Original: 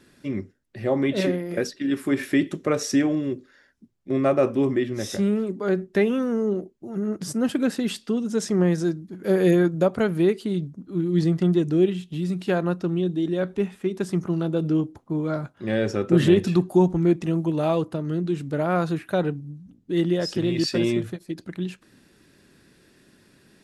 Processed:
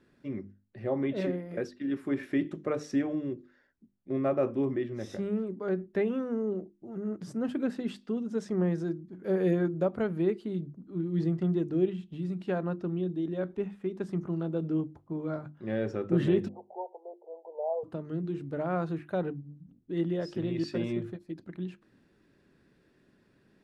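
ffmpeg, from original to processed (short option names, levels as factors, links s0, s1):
-filter_complex "[0:a]asplit=3[s0][s1][s2];[s0]afade=t=out:st=16.47:d=0.02[s3];[s1]asuperpass=centerf=630:order=12:qfactor=1.3,afade=t=in:st=16.47:d=0.02,afade=t=out:st=17.83:d=0.02[s4];[s2]afade=t=in:st=17.83:d=0.02[s5];[s3][s4][s5]amix=inputs=3:normalize=0,lowpass=f=1500:p=1,bandreject=f=50:t=h:w=6,bandreject=f=100:t=h:w=6,bandreject=f=150:t=h:w=6,bandreject=f=200:t=h:w=6,bandreject=f=250:t=h:w=6,bandreject=f=300:t=h:w=6,bandreject=f=350:t=h:w=6,volume=0.447"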